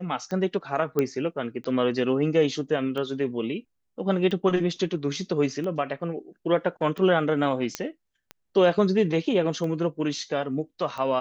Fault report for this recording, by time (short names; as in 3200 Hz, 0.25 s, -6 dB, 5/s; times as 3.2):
tick 45 rpm -22 dBFS
0.99 pop -12 dBFS
7.75 pop -12 dBFS